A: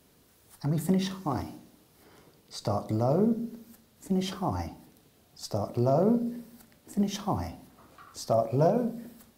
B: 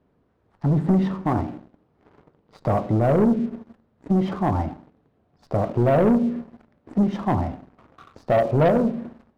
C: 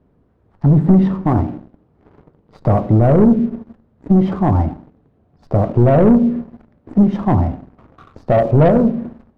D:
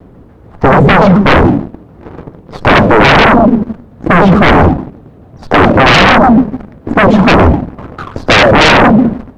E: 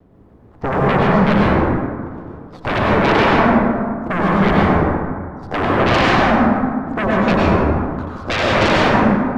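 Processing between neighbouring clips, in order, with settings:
low-pass 1.3 kHz 12 dB/octave; waveshaping leveller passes 2; trim +2.5 dB
tilt EQ -2 dB/octave; trim +3.5 dB
sine folder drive 15 dB, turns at -3 dBFS; vibrato with a chosen wave saw down 6.9 Hz, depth 250 cents; trim +1.5 dB
plate-style reverb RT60 1.9 s, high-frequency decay 0.4×, pre-delay 85 ms, DRR -4 dB; trim -14.5 dB

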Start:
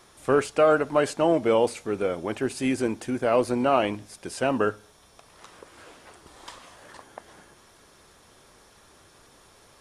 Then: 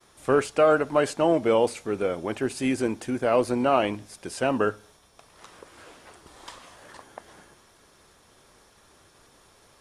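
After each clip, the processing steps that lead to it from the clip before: expander -52 dBFS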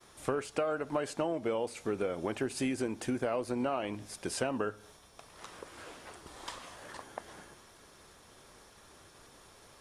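compression 10:1, threshold -29 dBFS, peak gain reduction 14.5 dB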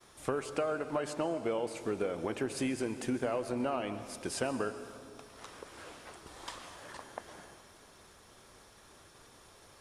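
reverberation RT60 2.3 s, pre-delay 106 ms, DRR 10.5 dB; trim -1 dB

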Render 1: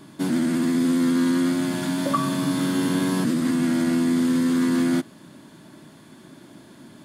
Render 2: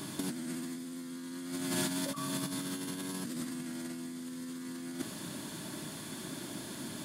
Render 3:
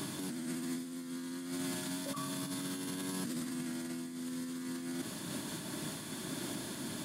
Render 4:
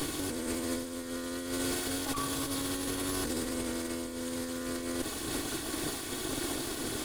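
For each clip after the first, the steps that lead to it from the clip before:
treble shelf 3.5 kHz +11.5 dB; compressor with a negative ratio -28 dBFS, ratio -0.5; trim -7 dB
peak limiter -30.5 dBFS, peak gain reduction 9.5 dB; random flutter of the level, depth 50%; trim +3.5 dB
comb filter that takes the minimum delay 2.7 ms; trim +7.5 dB

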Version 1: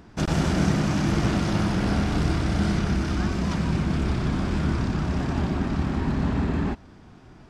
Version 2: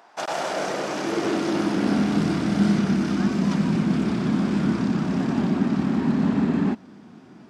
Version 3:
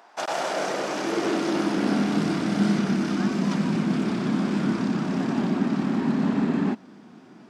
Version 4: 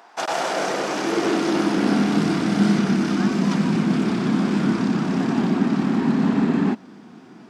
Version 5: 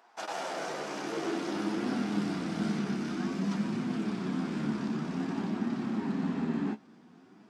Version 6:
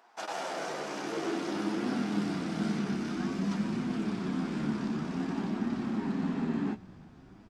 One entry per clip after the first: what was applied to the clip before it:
high-pass sweep 740 Hz -> 210 Hz, 0.16–2.17 s
Bessel high-pass 180 Hz, order 2
band-stop 590 Hz, Q 12; trim +4 dB
flange 0.52 Hz, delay 7.9 ms, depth 6.5 ms, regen +39%; trim -8.5 dB
frequency-shifting echo 343 ms, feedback 62%, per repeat -48 Hz, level -22.5 dB

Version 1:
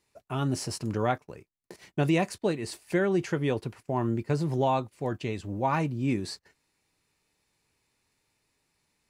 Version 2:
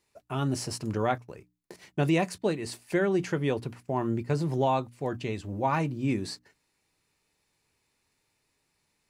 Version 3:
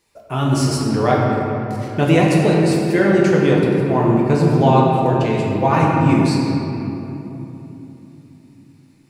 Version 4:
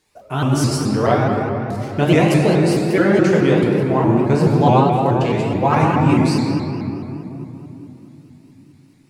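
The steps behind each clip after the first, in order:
hum notches 60/120/180/240/300 Hz
simulated room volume 170 m³, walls hard, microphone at 0.67 m; trim +7.5 dB
vibrato with a chosen wave saw up 4.7 Hz, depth 160 cents

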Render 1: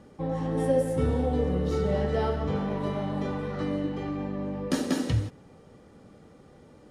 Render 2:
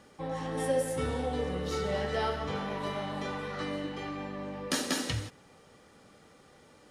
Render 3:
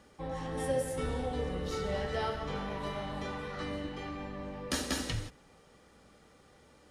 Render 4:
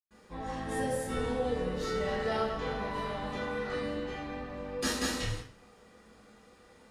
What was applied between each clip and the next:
tilt shelf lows -7.5 dB, about 740 Hz; trim -2 dB
octave divider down 2 oct, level -4 dB; trim -3 dB
reverberation RT60 0.45 s, pre-delay 107 ms

